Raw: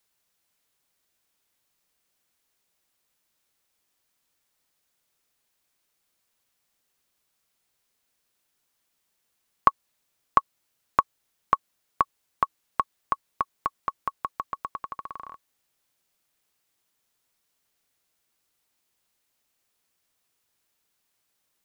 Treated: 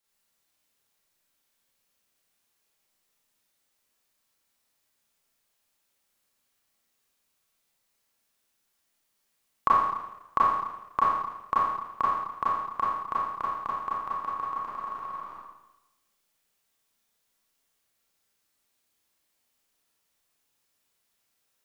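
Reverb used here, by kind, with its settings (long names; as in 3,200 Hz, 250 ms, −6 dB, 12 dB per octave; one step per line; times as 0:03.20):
four-comb reverb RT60 1 s, combs from 28 ms, DRR −7.5 dB
level −8 dB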